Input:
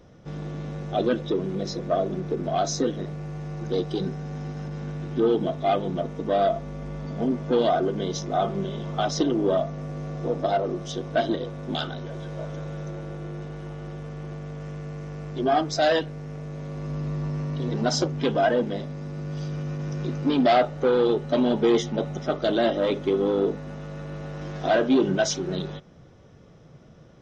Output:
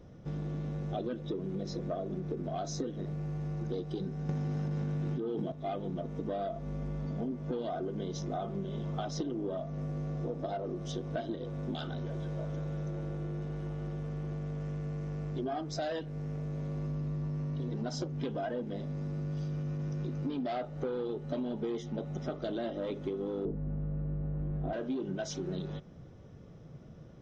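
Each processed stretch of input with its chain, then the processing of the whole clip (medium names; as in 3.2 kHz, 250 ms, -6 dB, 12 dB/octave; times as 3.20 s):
4.29–5.52 s: high-pass 77 Hz + level flattener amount 100%
23.45–24.73 s: low-pass 2.8 kHz + tilt EQ -4 dB/octave
whole clip: bass shelf 470 Hz +8 dB; compression, threshold -26 dBFS; trim -7 dB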